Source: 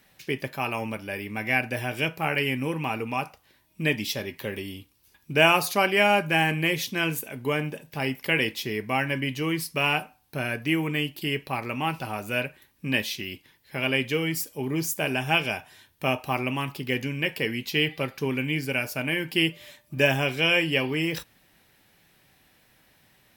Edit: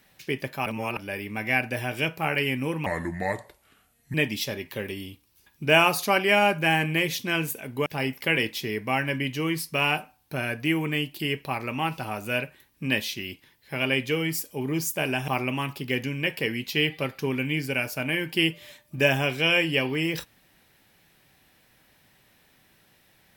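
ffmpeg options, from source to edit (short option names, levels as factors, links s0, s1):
-filter_complex "[0:a]asplit=7[s0][s1][s2][s3][s4][s5][s6];[s0]atrim=end=0.662[s7];[s1]atrim=start=0.658:end=0.972,asetpts=PTS-STARTPTS,areverse[s8];[s2]atrim=start=0.968:end=2.864[s9];[s3]atrim=start=2.86:end=3.82,asetpts=PTS-STARTPTS,asetrate=33075,aresample=44100[s10];[s4]atrim=start=3.816:end=7.542[s11];[s5]atrim=start=7.878:end=15.302[s12];[s6]atrim=start=16.268[s13];[s7][s8]acrossfade=d=0.004:c1=hsin:c2=hsin[s14];[s14][s9]acrossfade=d=0.004:c1=hsin:c2=hsin[s15];[s15][s10]acrossfade=d=0.004:c1=hsin:c2=hsin[s16];[s16][s11]acrossfade=d=0.004:c1=hsin:c2=hsin[s17];[s17][s12]acrossfade=d=0.004:c1=hsin:c2=hsin[s18];[s18][s13]acrossfade=d=0.004:c1=hsin:c2=hsin"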